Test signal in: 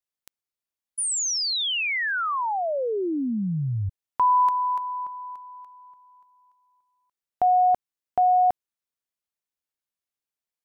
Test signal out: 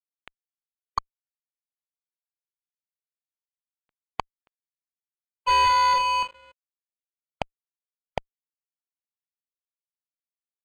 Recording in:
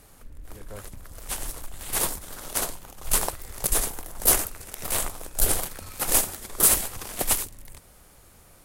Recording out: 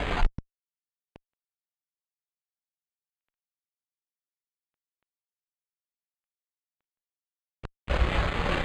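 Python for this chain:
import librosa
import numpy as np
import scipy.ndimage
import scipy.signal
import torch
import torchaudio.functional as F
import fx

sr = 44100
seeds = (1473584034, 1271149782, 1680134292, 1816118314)

y = fx.rattle_buzz(x, sr, strikes_db=-36.0, level_db=-16.0)
y = fx.over_compress(y, sr, threshold_db=-28.0, ratio=-1.0)
y = fx.peak_eq(y, sr, hz=64.0, db=6.5, octaves=1.8)
y = fx.echo_feedback(y, sr, ms=61, feedback_pct=37, wet_db=-23.0)
y = fx.rev_gated(y, sr, seeds[0], gate_ms=140, shape='falling', drr_db=1.0)
y = fx.gate_flip(y, sr, shuts_db=-25.0, range_db=-38)
y = fx.fuzz(y, sr, gain_db=45.0, gate_db=-48.0)
y = fx.noise_reduce_blind(y, sr, reduce_db=8)
y = np.repeat(y[::8], 8)[:len(y)]
y = scipy.signal.sosfilt(scipy.signal.butter(2, 3400.0, 'lowpass', fs=sr, output='sos'), y)
y = fx.dynamic_eq(y, sr, hz=760.0, q=0.94, threshold_db=-28.0, ratio=4.0, max_db=-5)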